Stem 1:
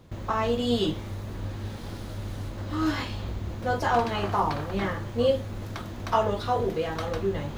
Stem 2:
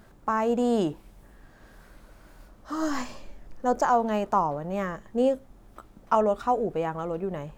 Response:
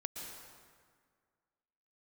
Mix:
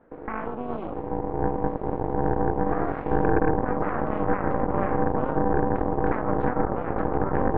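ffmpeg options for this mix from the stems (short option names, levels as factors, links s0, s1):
-filter_complex "[0:a]asubboost=boost=9:cutoff=220,aeval=exprs='val(0)*sin(2*PI*390*n/s)':c=same,volume=0.794[s0];[1:a]agate=range=0.0224:threshold=0.00316:ratio=3:detection=peak,acrossover=split=190|3000[s1][s2][s3];[s2]acompressor=threshold=0.0398:ratio=6[s4];[s1][s4][s3]amix=inputs=3:normalize=0,volume=0.668,asplit=2[s5][s6];[s6]apad=whole_len=334264[s7];[s0][s7]sidechaincompress=threshold=0.0126:ratio=8:attack=48:release=145[s8];[s8][s5]amix=inputs=2:normalize=0,lowshelf=f=270:g=-7,aeval=exprs='0.251*(cos(1*acos(clip(val(0)/0.251,-1,1)))-cos(1*PI/2))+0.0891*(cos(6*acos(clip(val(0)/0.251,-1,1)))-cos(6*PI/2))':c=same,lowpass=f=1800:w=0.5412,lowpass=f=1800:w=1.3066"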